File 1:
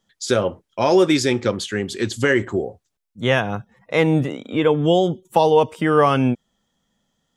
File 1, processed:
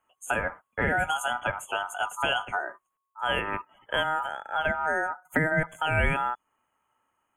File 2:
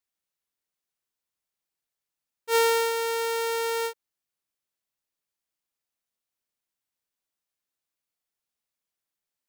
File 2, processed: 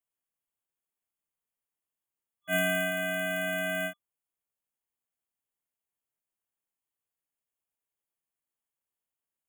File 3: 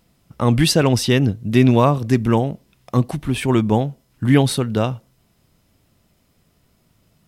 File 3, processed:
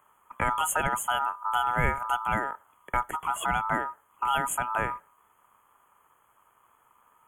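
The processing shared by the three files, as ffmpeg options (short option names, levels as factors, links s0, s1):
-filter_complex "[0:a]afftfilt=real='re*(1-between(b*sr/4096,2300,7400))':imag='im*(1-between(b*sr/4096,2300,7400))':win_size=4096:overlap=0.75,aeval=exprs='val(0)*sin(2*PI*1100*n/s)':c=same,acrossover=split=230|3000[s0][s1][s2];[s1]acompressor=threshold=0.0501:ratio=4[s3];[s0][s3][s2]amix=inputs=3:normalize=0"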